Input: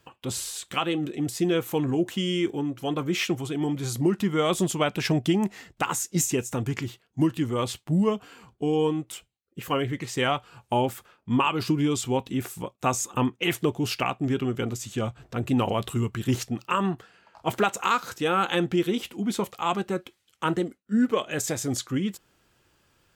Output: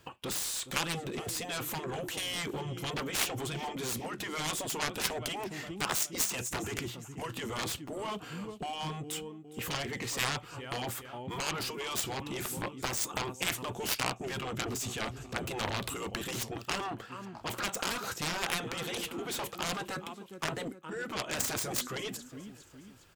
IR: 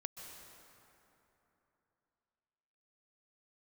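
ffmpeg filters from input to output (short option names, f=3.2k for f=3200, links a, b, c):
-af "aecho=1:1:410|820|1230:0.0708|0.0333|0.0156,alimiter=limit=-16.5dB:level=0:latency=1:release=201,afftfilt=real='re*lt(hypot(re,im),0.178)':imag='im*lt(hypot(re,im),0.178)':win_size=1024:overlap=0.75,aeval=exprs='0.158*(cos(1*acos(clip(val(0)/0.158,-1,1)))-cos(1*PI/2))+0.0562*(cos(7*acos(clip(val(0)/0.158,-1,1)))-cos(7*PI/2))':c=same"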